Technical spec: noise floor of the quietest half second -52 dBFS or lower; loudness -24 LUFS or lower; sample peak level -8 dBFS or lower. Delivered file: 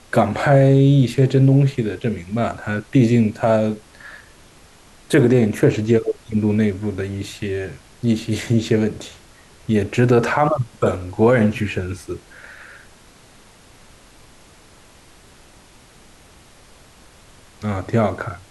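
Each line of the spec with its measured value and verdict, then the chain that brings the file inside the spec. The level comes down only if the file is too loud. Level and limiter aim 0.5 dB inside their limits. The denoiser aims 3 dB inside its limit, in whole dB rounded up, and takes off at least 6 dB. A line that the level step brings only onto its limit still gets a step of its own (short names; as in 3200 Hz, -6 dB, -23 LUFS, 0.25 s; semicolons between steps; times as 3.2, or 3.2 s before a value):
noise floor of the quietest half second -48 dBFS: fail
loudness -18.5 LUFS: fail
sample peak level -4.5 dBFS: fail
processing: gain -6 dB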